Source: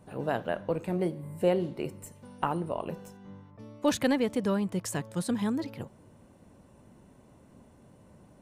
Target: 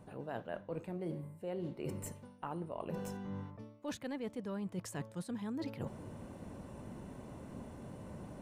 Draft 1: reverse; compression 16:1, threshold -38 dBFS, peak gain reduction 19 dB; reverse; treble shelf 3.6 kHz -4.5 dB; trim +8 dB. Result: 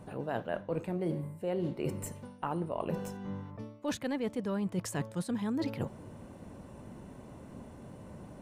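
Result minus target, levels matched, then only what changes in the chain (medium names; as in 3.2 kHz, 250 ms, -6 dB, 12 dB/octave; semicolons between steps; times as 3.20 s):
compression: peak gain reduction -7 dB
change: compression 16:1, threshold -45.5 dBFS, peak gain reduction 26 dB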